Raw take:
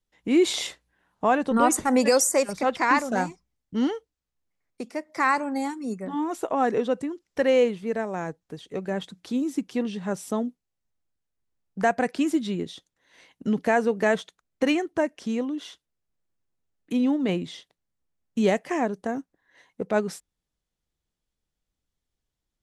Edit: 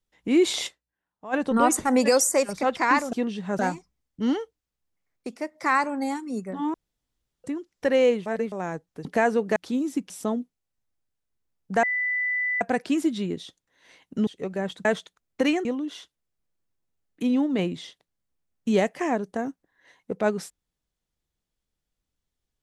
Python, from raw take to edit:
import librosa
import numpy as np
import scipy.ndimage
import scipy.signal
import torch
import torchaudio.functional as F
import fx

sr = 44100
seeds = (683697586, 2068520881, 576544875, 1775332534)

y = fx.edit(x, sr, fx.fade_down_up(start_s=0.67, length_s=0.67, db=-17.5, fade_s=0.13, curve='exp'),
    fx.room_tone_fill(start_s=6.28, length_s=0.7),
    fx.reverse_span(start_s=7.8, length_s=0.26),
    fx.swap(start_s=8.59, length_s=0.58, other_s=13.56, other_length_s=0.51),
    fx.move(start_s=9.71, length_s=0.46, to_s=3.13),
    fx.insert_tone(at_s=11.9, length_s=0.78, hz=1990.0, db=-23.0),
    fx.cut(start_s=14.87, length_s=0.48), tone=tone)